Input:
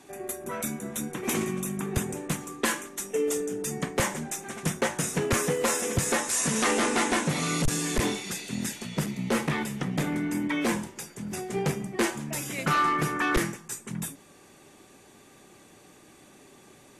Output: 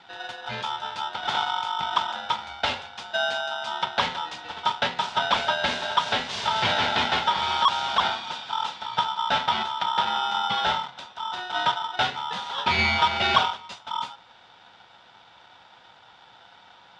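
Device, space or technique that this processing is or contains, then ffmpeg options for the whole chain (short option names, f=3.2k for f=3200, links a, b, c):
ring modulator pedal into a guitar cabinet: -filter_complex "[0:a]asettb=1/sr,asplit=3[a][b][c];[a]atrim=end=12.784[d];[b]atrim=start=12.78:end=13.73,asetpts=PTS-STARTPTS,afade=t=in:d=0.004:c=qsin,afade=t=out:st=0.946:d=0.004:c=qsin,aecho=1:1:6.6:0.66,atrim=end_sample=41895[e];[c]atrim=start=13.726[f];[d][e]acrossfade=d=0.004:c1=hsin:c2=qsin[g];[g][f]acrossfade=d=0.004:c1=qsin:c2=hsin,aeval=exprs='val(0)*sgn(sin(2*PI*1100*n/s))':c=same,highpass=78,equalizer=f=85:t=q:w=4:g=-5,equalizer=f=120:t=q:w=4:g=4,equalizer=f=190:t=q:w=4:g=5,equalizer=f=320:t=q:w=4:g=-6,equalizer=f=950:t=q:w=4:g=8,equalizer=f=3.5k:t=q:w=4:g=8,lowpass=f=4.5k:w=0.5412,lowpass=f=4.5k:w=1.3066"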